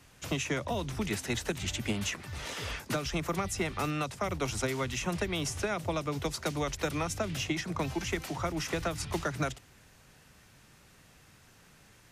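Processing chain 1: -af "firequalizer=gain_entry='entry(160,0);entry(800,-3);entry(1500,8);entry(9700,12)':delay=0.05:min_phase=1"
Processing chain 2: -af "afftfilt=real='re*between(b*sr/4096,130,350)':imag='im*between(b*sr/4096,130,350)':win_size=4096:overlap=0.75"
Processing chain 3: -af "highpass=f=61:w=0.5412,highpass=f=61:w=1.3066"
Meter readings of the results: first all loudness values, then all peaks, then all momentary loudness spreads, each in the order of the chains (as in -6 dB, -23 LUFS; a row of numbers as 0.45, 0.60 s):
-27.5, -39.0, -33.5 LUFS; -13.0, -22.0, -18.5 dBFS; 5, 4, 3 LU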